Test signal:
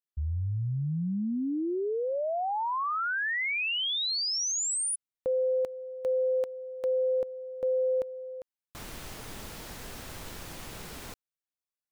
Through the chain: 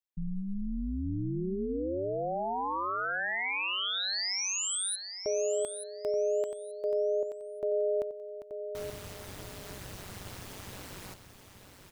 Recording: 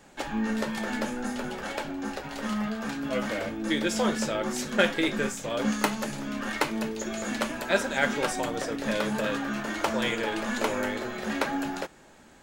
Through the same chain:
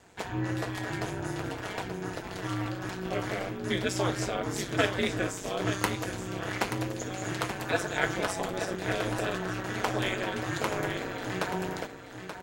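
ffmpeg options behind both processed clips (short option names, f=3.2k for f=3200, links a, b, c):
-af "aecho=1:1:880|1760|2640:0.355|0.071|0.0142,aeval=exprs='val(0)*sin(2*PI*96*n/s)':c=same"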